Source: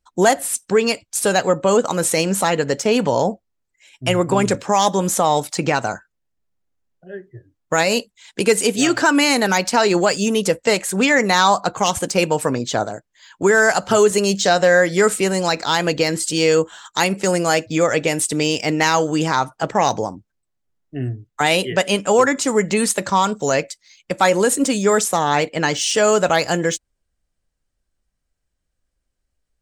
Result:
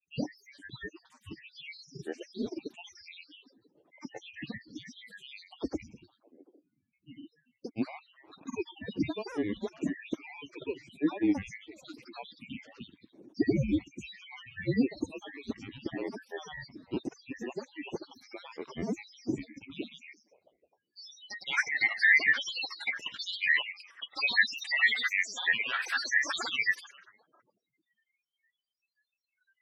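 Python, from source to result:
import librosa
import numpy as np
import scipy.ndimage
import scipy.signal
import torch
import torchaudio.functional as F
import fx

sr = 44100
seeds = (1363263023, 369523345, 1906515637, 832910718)

p1 = fx.band_shuffle(x, sr, order='2413')
p2 = fx.low_shelf(p1, sr, hz=220.0, db=10.5)
p3 = p2 + fx.echo_stepped(p2, sr, ms=149, hz=3100.0, octaves=-0.7, feedback_pct=70, wet_db=-10.5, dry=0)
p4 = fx.granulator(p3, sr, seeds[0], grain_ms=100.0, per_s=20.0, spray_ms=100.0, spread_st=12)
p5 = fx.highpass(p4, sr, hz=100.0, slope=6)
p6 = fx.spec_gate(p5, sr, threshold_db=-20, keep='strong')
p7 = fx.dynamic_eq(p6, sr, hz=170.0, q=6.0, threshold_db=-41.0, ratio=4.0, max_db=-4)
y = fx.filter_sweep_bandpass(p7, sr, from_hz=300.0, to_hz=1600.0, start_s=19.86, end_s=21.32, q=3.8)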